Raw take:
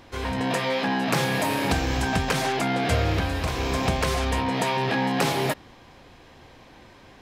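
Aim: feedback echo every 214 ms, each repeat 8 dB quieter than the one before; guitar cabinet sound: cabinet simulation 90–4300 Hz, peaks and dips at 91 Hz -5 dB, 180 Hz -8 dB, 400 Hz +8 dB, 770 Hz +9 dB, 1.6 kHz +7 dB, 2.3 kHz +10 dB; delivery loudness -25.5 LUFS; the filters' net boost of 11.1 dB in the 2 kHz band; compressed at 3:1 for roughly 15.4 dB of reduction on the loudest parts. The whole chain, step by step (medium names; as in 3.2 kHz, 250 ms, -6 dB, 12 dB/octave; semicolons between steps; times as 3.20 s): peaking EQ 2 kHz +4 dB; compression 3:1, threshold -40 dBFS; cabinet simulation 90–4300 Hz, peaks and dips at 91 Hz -5 dB, 180 Hz -8 dB, 400 Hz +8 dB, 770 Hz +9 dB, 1.6 kHz +7 dB, 2.3 kHz +10 dB; feedback delay 214 ms, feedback 40%, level -8 dB; trim +7 dB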